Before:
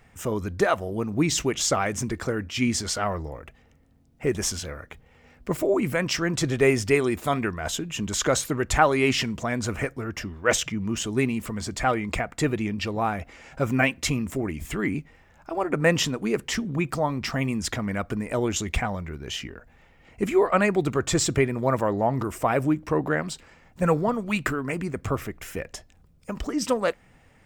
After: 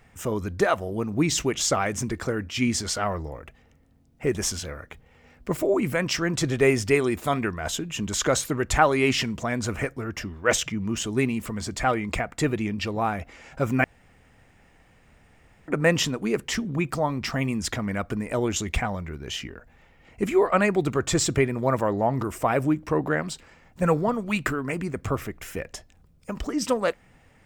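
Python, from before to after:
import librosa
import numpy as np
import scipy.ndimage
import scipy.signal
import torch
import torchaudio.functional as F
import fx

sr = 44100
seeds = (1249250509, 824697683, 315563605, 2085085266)

y = fx.edit(x, sr, fx.room_tone_fill(start_s=13.84, length_s=1.84), tone=tone)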